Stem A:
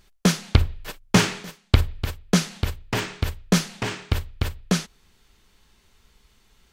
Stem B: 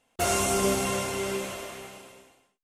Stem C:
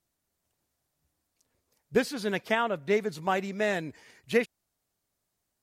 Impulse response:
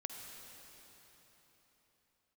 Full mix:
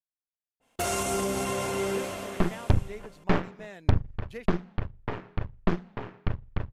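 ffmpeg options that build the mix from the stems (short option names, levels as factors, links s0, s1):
-filter_complex "[0:a]lowpass=1100,bandreject=f=60:t=h:w=6,bandreject=f=120:t=h:w=6,bandreject=f=180:t=h:w=6,bandreject=f=240:t=h:w=6,aeval=exprs='0.531*(cos(1*acos(clip(val(0)/0.531,-1,1)))-cos(1*PI/2))+0.237*(cos(6*acos(clip(val(0)/0.531,-1,1)))-cos(6*PI/2))':c=same,adelay=2150,volume=0.376[s0];[1:a]alimiter=limit=0.1:level=0:latency=1:release=86,adynamicequalizer=threshold=0.00447:dfrequency=1900:dqfactor=0.7:tfrequency=1900:tqfactor=0.7:attack=5:release=100:ratio=0.375:range=2.5:mode=cutabove:tftype=highshelf,adelay=600,volume=0.794,asplit=2[s1][s2];[s2]volume=0.708[s3];[2:a]agate=range=0.141:threshold=0.00501:ratio=16:detection=peak,asoftclip=type=hard:threshold=0.188,volume=0.158[s4];[3:a]atrim=start_sample=2205[s5];[s3][s5]afir=irnorm=-1:irlink=0[s6];[s0][s1][s4][s6]amix=inputs=4:normalize=0"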